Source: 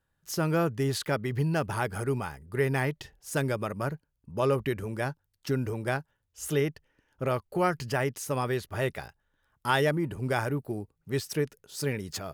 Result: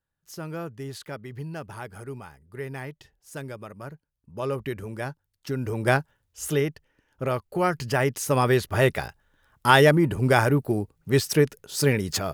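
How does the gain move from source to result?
3.82 s -8 dB
4.77 s -1 dB
5.55 s -1 dB
5.91 s +9 dB
6.67 s +2 dB
7.58 s +2 dB
8.52 s +9 dB

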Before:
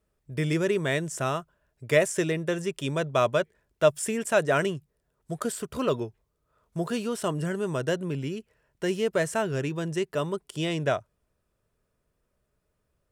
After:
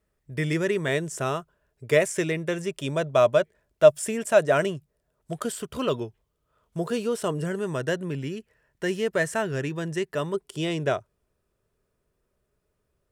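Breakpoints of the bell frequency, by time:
bell +6.5 dB 0.27 oct
1900 Hz
from 0.88 s 420 Hz
from 2 s 2200 Hz
from 2.66 s 620 Hz
from 5.33 s 3100 Hz
from 6.79 s 460 Hz
from 7.59 s 1800 Hz
from 10.34 s 390 Hz

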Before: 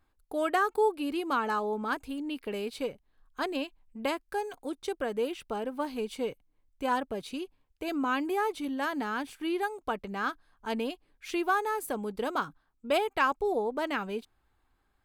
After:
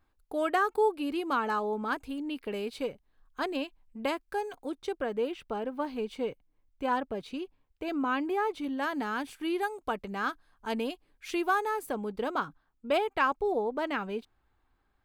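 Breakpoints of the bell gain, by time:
bell 11000 Hz 1.7 oct
4.47 s -4 dB
5.1 s -12 dB
8.47 s -12 dB
9.12 s 0 dB
11.53 s 0 dB
11.99 s -9 dB

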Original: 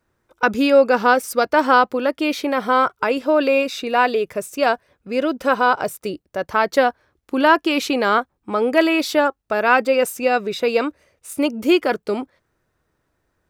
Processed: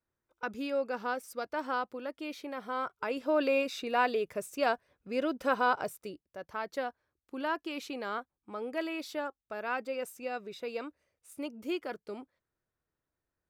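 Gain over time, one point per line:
2.72 s -19 dB
3.37 s -11 dB
5.77 s -11 dB
6.28 s -19 dB

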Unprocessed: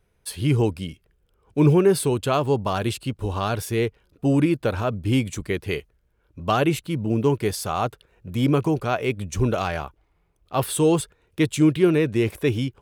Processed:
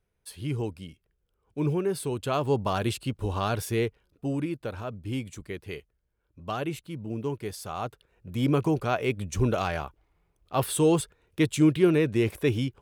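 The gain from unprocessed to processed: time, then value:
1.93 s -10.5 dB
2.58 s -3 dB
3.74 s -3 dB
4.4 s -11 dB
7.48 s -11 dB
8.69 s -3 dB

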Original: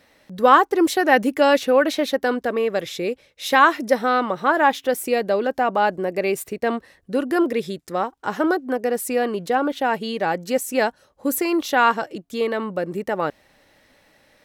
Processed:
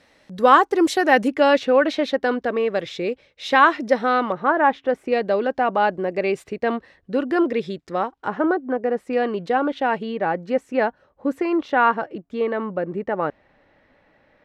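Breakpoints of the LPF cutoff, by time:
8600 Hz
from 1.28 s 4300 Hz
from 4.32 s 1900 Hz
from 5.12 s 4000 Hz
from 8.28 s 1800 Hz
from 9.13 s 3500 Hz
from 10.03 s 2000 Hz

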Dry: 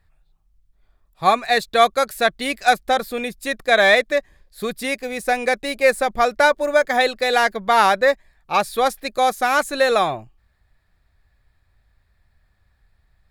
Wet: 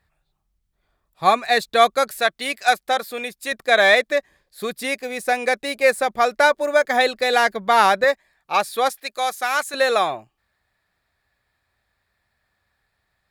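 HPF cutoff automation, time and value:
HPF 6 dB/oct
140 Hz
from 2.2 s 570 Hz
from 3.52 s 260 Hz
from 6.89 s 110 Hz
from 8.04 s 410 Hz
from 8.89 s 1200 Hz
from 9.74 s 390 Hz

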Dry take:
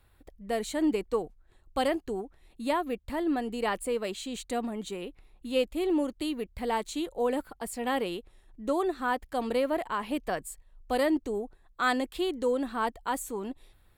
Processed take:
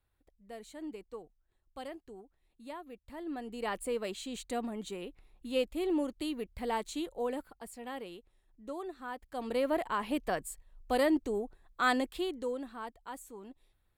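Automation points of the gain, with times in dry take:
2.93 s -16 dB
3.83 s -4 dB
7 s -4 dB
7.9 s -12.5 dB
9.15 s -12.5 dB
9.7 s -1.5 dB
12 s -1.5 dB
12.84 s -13 dB

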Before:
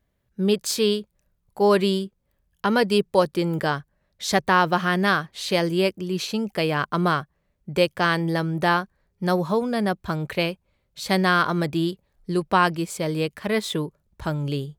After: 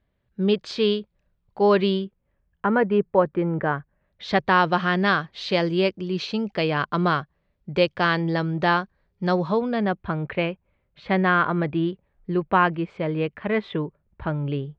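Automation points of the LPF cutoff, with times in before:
LPF 24 dB/oct
1.87 s 4000 Hz
2.66 s 2000 Hz
3.66 s 2000 Hz
4.55 s 4600 Hz
9.43 s 4600 Hz
10.19 s 2700 Hz

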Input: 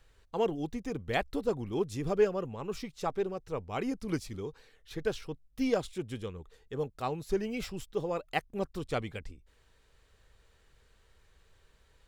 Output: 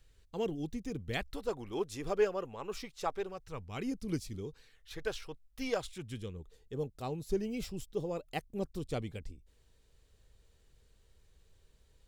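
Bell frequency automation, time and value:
bell -10.5 dB 2.3 oct
1.11 s 990 Hz
1.58 s 140 Hz
3.06 s 140 Hz
3.94 s 1100 Hz
4.47 s 1100 Hz
5.01 s 200 Hz
5.74 s 200 Hz
6.37 s 1400 Hz

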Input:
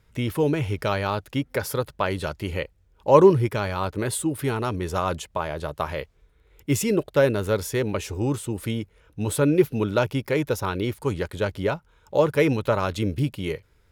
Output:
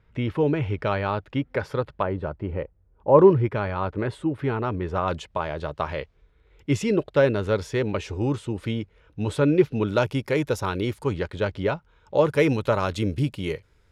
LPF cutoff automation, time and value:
2700 Hz
from 2.03 s 1100 Hz
from 3.19 s 2200 Hz
from 5.08 s 4500 Hz
from 9.87 s 9200 Hz
from 11.04 s 4600 Hz
from 12.25 s 9400 Hz

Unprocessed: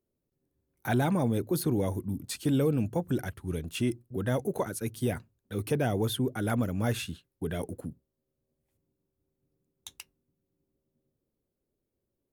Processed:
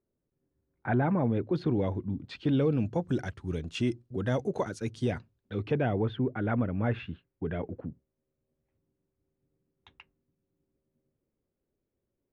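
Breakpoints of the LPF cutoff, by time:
LPF 24 dB/oct
1.14 s 2100 Hz
1.6 s 3600 Hz
2.4 s 3600 Hz
3.1 s 6500 Hz
4.99 s 6500 Hz
6.07 s 2500 Hz

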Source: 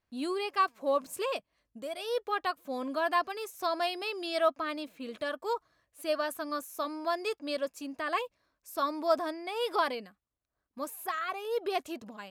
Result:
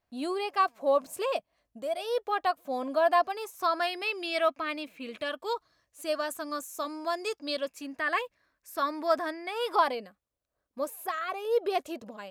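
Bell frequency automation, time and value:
bell +8.5 dB 0.6 oct
3.29 s 690 Hz
4.1 s 2400 Hz
5.17 s 2400 Hz
6.06 s 7400 Hz
7.26 s 7400 Hz
7.85 s 1800 Hz
9.49 s 1800 Hz
10.02 s 540 Hz

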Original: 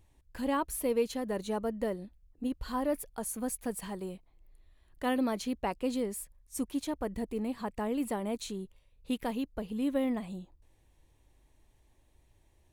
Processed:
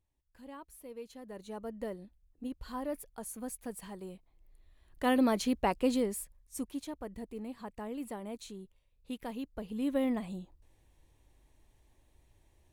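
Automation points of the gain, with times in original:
0.88 s -17.5 dB
1.81 s -6 dB
3.97 s -6 dB
5.26 s +3.5 dB
5.87 s +3.5 dB
6.98 s -7.5 dB
9.15 s -7.5 dB
10.04 s 0 dB

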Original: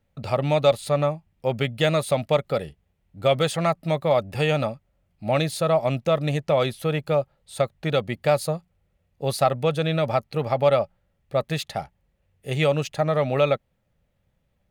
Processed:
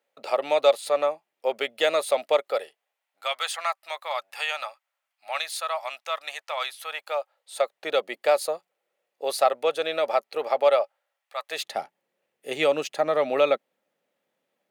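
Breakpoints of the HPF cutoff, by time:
HPF 24 dB/oct
2.38 s 400 Hz
3.3 s 890 Hz
6.81 s 890 Hz
7.87 s 400 Hz
10.64 s 400 Hz
11.4 s 910 Hz
11.66 s 280 Hz

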